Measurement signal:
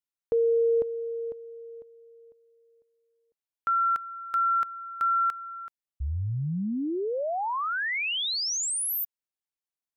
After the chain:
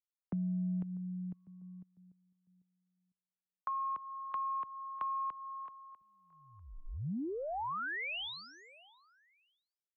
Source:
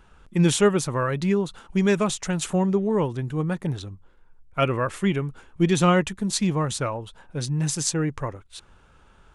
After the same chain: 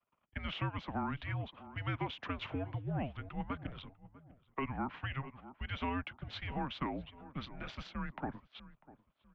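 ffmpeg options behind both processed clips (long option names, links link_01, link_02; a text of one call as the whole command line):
ffmpeg -i in.wav -filter_complex "[0:a]agate=range=-33dB:threshold=-43dB:ratio=3:release=28:detection=peak,asplit=2[link_01][link_02];[link_02]adelay=646,lowpass=frequency=1900:poles=1,volume=-21.5dB,asplit=2[link_03][link_04];[link_04]adelay=646,lowpass=frequency=1900:poles=1,volume=0.34[link_05];[link_01][link_03][link_05]amix=inputs=3:normalize=0,alimiter=limit=-15dB:level=0:latency=1:release=360,aeval=exprs='0.178*(cos(1*acos(clip(val(0)/0.178,-1,1)))-cos(1*PI/2))+0.00224*(cos(2*acos(clip(val(0)/0.178,-1,1)))-cos(2*PI/2))':channel_layout=same,highpass=frequency=360:width_type=q:width=0.5412,highpass=frequency=360:width_type=q:width=1.307,lowpass=frequency=3500:width_type=q:width=0.5176,lowpass=frequency=3500:width_type=q:width=0.7071,lowpass=frequency=3500:width_type=q:width=1.932,afreqshift=-280,acrossover=split=170|380|820[link_06][link_07][link_08][link_09];[link_06]acompressor=threshold=-37dB:ratio=4[link_10];[link_07]acompressor=threshold=-37dB:ratio=4[link_11];[link_08]acompressor=threshold=-45dB:ratio=4[link_12];[link_09]acompressor=threshold=-35dB:ratio=4[link_13];[link_10][link_11][link_12][link_13]amix=inputs=4:normalize=0,volume=-4dB" out.wav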